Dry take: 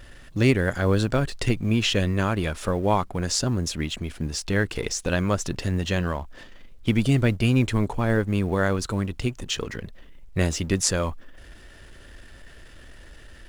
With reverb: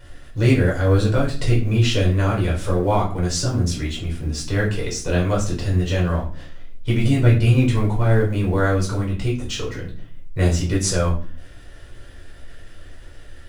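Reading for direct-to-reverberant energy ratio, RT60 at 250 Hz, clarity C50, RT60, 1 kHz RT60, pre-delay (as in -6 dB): -4.5 dB, 0.60 s, 8.5 dB, 0.40 s, 0.35 s, 7 ms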